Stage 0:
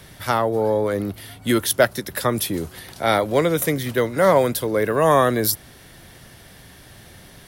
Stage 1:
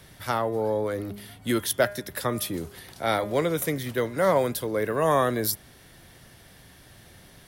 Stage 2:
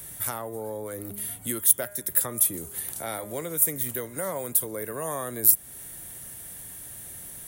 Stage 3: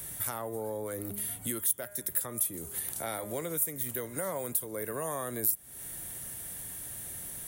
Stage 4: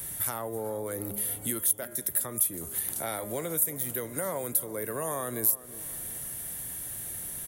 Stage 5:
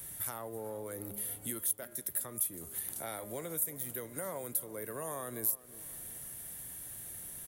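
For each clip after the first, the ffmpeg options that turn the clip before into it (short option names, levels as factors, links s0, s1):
-af "bandreject=f=203.7:t=h:w=4,bandreject=f=407.4:t=h:w=4,bandreject=f=611.1:t=h:w=4,bandreject=f=814.8:t=h:w=4,bandreject=f=1018.5:t=h:w=4,bandreject=f=1222.2:t=h:w=4,bandreject=f=1425.9:t=h:w=4,bandreject=f=1629.6:t=h:w=4,bandreject=f=1833.3:t=h:w=4,bandreject=f=2037:t=h:w=4,bandreject=f=2240.7:t=h:w=4,bandreject=f=2444.4:t=h:w=4,bandreject=f=2648.1:t=h:w=4,bandreject=f=2851.8:t=h:w=4,bandreject=f=3055.5:t=h:w=4,bandreject=f=3259.2:t=h:w=4,bandreject=f=3462.9:t=h:w=4,volume=0.501"
-af "equalizer=f=12000:w=4.3:g=-6,acompressor=threshold=0.0126:ratio=2,aexciter=amount=10.7:drive=3.8:freq=7100"
-af "acompressor=threshold=0.0224:ratio=2"
-filter_complex "[0:a]aexciter=amount=1.4:drive=3.8:freq=11000,asoftclip=type=hard:threshold=0.178,asplit=2[s0][s1];[s1]adelay=363,lowpass=f=1400:p=1,volume=0.178,asplit=2[s2][s3];[s3]adelay=363,lowpass=f=1400:p=1,volume=0.48,asplit=2[s4][s5];[s5]adelay=363,lowpass=f=1400:p=1,volume=0.48,asplit=2[s6][s7];[s7]adelay=363,lowpass=f=1400:p=1,volume=0.48[s8];[s0][s2][s4][s6][s8]amix=inputs=5:normalize=0,volume=1.26"
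-af "aeval=exprs='sgn(val(0))*max(abs(val(0))-0.00141,0)':c=same,volume=0.447"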